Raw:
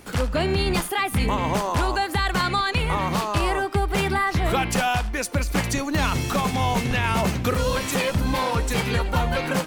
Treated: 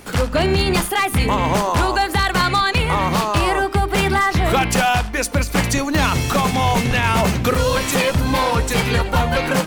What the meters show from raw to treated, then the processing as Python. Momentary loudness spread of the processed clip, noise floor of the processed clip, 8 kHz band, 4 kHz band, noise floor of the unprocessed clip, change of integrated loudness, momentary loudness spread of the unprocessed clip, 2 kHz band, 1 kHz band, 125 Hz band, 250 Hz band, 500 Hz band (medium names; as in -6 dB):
2 LU, -28 dBFS, +6.0 dB, +6.0 dB, -33 dBFS, +5.5 dB, 2 LU, +6.0 dB, +6.0 dB, +5.0 dB, +5.0 dB, +5.5 dB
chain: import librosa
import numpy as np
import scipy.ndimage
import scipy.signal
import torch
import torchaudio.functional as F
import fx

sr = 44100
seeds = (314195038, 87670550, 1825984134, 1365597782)

y = fx.hum_notches(x, sr, base_hz=50, count=8)
y = 10.0 ** (-14.5 / 20.0) * (np.abs((y / 10.0 ** (-14.5 / 20.0) + 3.0) % 4.0 - 2.0) - 1.0)
y = y * librosa.db_to_amplitude(6.0)